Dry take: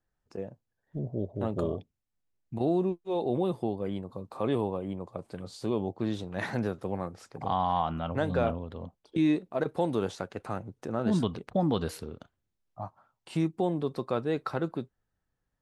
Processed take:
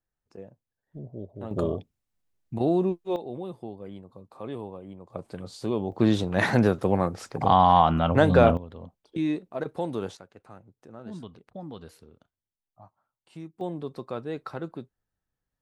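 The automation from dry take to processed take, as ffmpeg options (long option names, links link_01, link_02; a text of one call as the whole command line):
ffmpeg -i in.wav -af "asetnsamples=nb_out_samples=441:pad=0,asendcmd='1.51 volume volume 3.5dB;3.16 volume volume -7.5dB;5.1 volume volume 2dB;5.92 volume volume 10dB;8.57 volume volume -2dB;10.17 volume volume -13dB;13.61 volume volume -4dB',volume=-6dB" out.wav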